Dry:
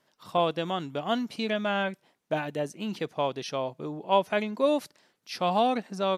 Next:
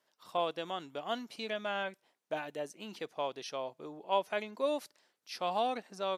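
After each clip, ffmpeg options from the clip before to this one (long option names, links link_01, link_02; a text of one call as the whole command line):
ffmpeg -i in.wav -af "bass=frequency=250:gain=-12,treble=frequency=4000:gain=2,volume=-7dB" out.wav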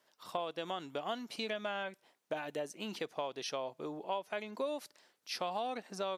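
ffmpeg -i in.wav -af "acompressor=threshold=-39dB:ratio=5,volume=4.5dB" out.wav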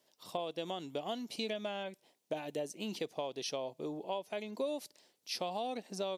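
ffmpeg -i in.wav -af "equalizer=frequency=1400:width=1.1:gain=-12.5,volume=3dB" out.wav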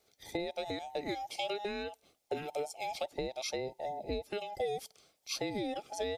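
ffmpeg -i in.wav -af "afftfilt=real='real(if(between(b,1,1008),(2*floor((b-1)/48)+1)*48-b,b),0)':imag='imag(if(between(b,1,1008),(2*floor((b-1)/48)+1)*48-b,b),0)*if(between(b,1,1008),-1,1)':win_size=2048:overlap=0.75,volume=1.5dB" out.wav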